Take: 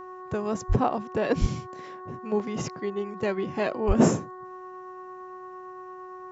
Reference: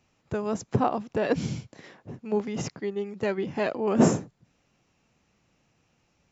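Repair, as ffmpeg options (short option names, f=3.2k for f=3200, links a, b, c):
-filter_complex "[0:a]bandreject=f=369.6:t=h:w=4,bandreject=f=739.2:t=h:w=4,bandreject=f=1.1088k:t=h:w=4,bandreject=f=1.4784k:t=h:w=4,bandreject=f=1.848k:t=h:w=4,bandreject=f=1.1k:w=30,asplit=3[a][b][c];[a]afade=t=out:st=0.68:d=0.02[d];[b]highpass=f=140:w=0.5412,highpass=f=140:w=1.3066,afade=t=in:st=0.68:d=0.02,afade=t=out:st=0.8:d=0.02[e];[c]afade=t=in:st=0.8:d=0.02[f];[d][e][f]amix=inputs=3:normalize=0,asplit=3[g][h][i];[g]afade=t=out:st=1.4:d=0.02[j];[h]highpass=f=140:w=0.5412,highpass=f=140:w=1.3066,afade=t=in:st=1.4:d=0.02,afade=t=out:st=1.52:d=0.02[k];[i]afade=t=in:st=1.52:d=0.02[l];[j][k][l]amix=inputs=3:normalize=0,asplit=3[m][n][o];[m]afade=t=out:st=3.87:d=0.02[p];[n]highpass=f=140:w=0.5412,highpass=f=140:w=1.3066,afade=t=in:st=3.87:d=0.02,afade=t=out:st=3.99:d=0.02[q];[o]afade=t=in:st=3.99:d=0.02[r];[p][q][r]amix=inputs=3:normalize=0"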